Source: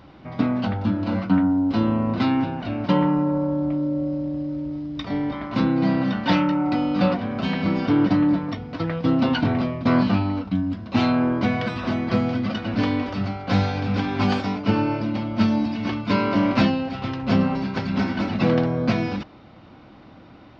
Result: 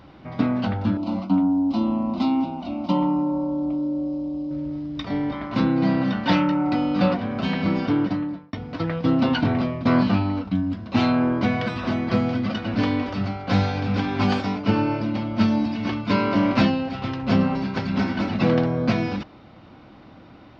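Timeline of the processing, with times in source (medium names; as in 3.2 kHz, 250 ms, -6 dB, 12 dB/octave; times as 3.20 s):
0.97–4.51 s: static phaser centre 450 Hz, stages 6
7.76–8.53 s: fade out linear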